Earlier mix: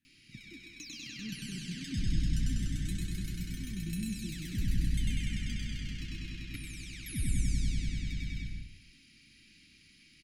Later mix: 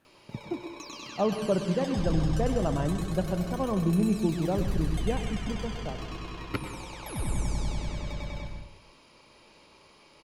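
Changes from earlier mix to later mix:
speech +11.0 dB; master: remove elliptic band-stop 270–1900 Hz, stop band 70 dB

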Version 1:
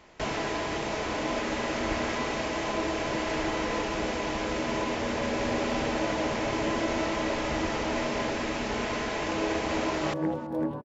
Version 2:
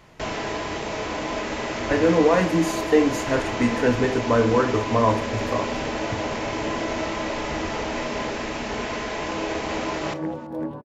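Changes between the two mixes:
speech: unmuted; reverb: on, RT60 0.35 s

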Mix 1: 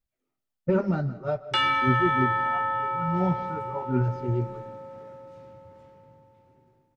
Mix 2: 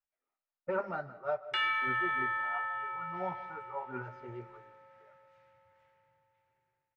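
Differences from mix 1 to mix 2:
background: add high-order bell 510 Hz -12.5 dB 2.9 oct; master: add three-band isolator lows -23 dB, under 580 Hz, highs -16 dB, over 2.4 kHz

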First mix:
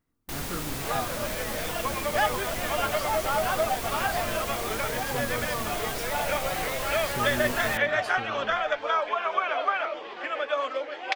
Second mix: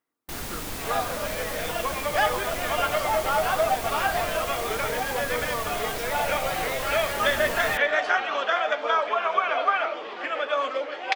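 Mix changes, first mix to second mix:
speech: add band-pass 420–4500 Hz; second sound: send on

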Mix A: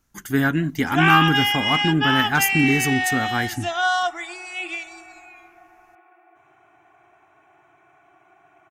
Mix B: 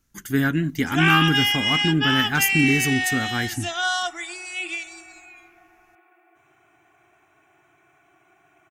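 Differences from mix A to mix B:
background: add treble shelf 6.2 kHz +9.5 dB; master: add peaking EQ 840 Hz -7 dB 1.3 oct

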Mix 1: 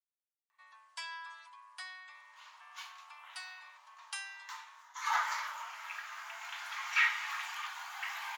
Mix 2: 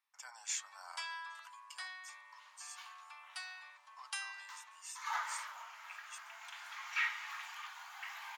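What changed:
speech: unmuted; second sound -6.5 dB

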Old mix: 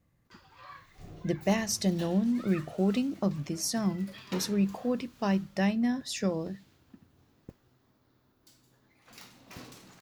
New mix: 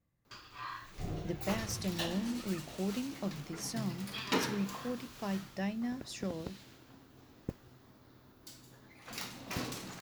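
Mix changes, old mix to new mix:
speech -9.0 dB; background +8.5 dB

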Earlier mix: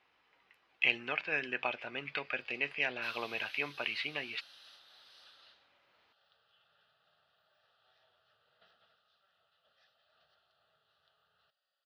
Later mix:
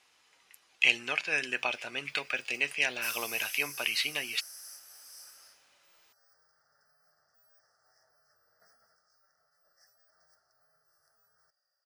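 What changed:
background: add elliptic band-stop 1.9–5.1 kHz, stop band 40 dB; master: remove distance through air 360 m

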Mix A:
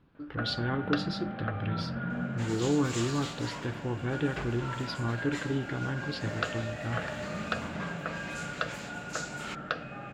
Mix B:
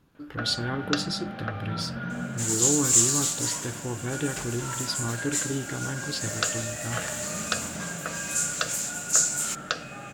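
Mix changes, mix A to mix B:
speech: add treble shelf 4.1 kHz -10.5 dB; second sound -4.0 dB; master: remove distance through air 360 m

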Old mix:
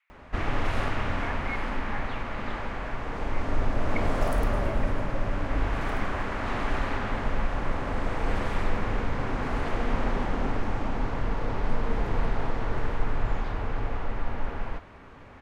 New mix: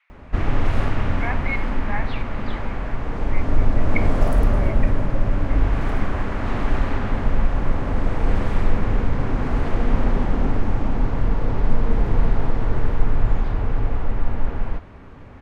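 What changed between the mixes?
speech +9.0 dB; master: add bass shelf 400 Hz +9.5 dB

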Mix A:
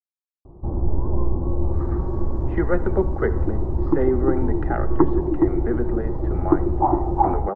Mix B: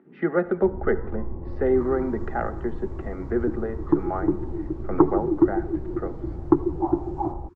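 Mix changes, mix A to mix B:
speech: entry -2.35 s; first sound -11.0 dB

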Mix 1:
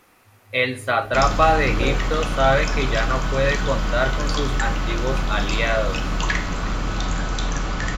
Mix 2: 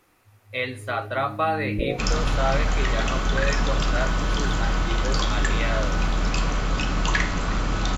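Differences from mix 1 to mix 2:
speech -7.0 dB; second sound: entry +0.85 s

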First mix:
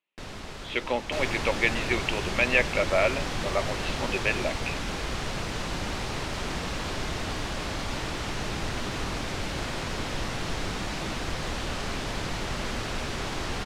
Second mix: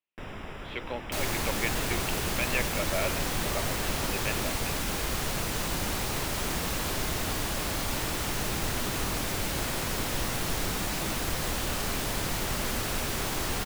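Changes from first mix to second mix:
speech -8.5 dB; first sound: add Savitzky-Golay filter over 25 samples; master: remove low-pass 5.4 kHz 12 dB/octave

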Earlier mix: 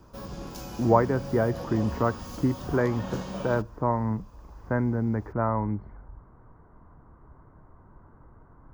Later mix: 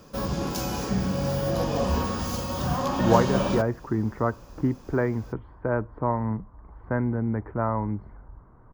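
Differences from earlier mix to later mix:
speech: entry +2.20 s; background +10.5 dB

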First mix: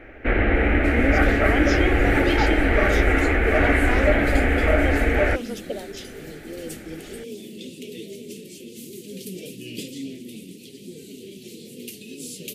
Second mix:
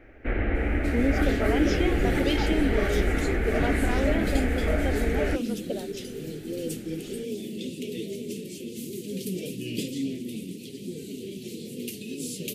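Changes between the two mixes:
speech -4.0 dB; first sound -10.5 dB; master: add bass shelf 390 Hz +5.5 dB

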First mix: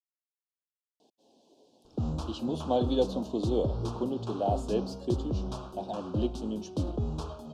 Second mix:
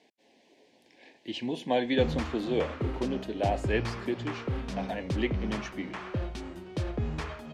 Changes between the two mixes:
speech: entry -1.00 s; master: remove Butterworth band-stop 2 kHz, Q 0.81

